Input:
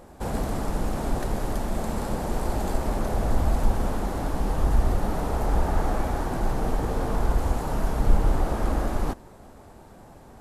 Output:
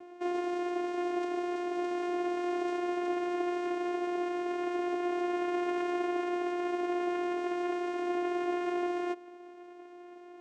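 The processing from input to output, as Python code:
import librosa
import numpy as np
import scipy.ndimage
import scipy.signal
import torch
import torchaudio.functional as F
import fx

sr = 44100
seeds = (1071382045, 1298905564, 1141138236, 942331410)

y = 10.0 ** (-23.5 / 20.0) * (np.abs((x / 10.0 ** (-23.5 / 20.0) + 3.0) % 4.0 - 2.0) - 1.0)
y = fx.vocoder(y, sr, bands=4, carrier='saw', carrier_hz=353.0)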